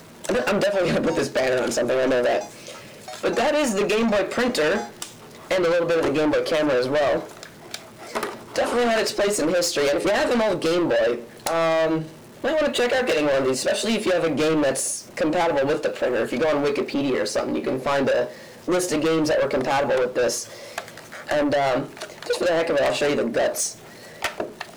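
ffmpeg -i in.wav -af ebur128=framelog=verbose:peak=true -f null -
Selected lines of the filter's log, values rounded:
Integrated loudness:
  I:         -22.2 LUFS
  Threshold: -32.7 LUFS
Loudness range:
  LRA:         2.0 LU
  Threshold: -42.6 LUFS
  LRA low:   -23.6 LUFS
  LRA high:  -21.5 LUFS
True peak:
  Peak:      -13.8 dBFS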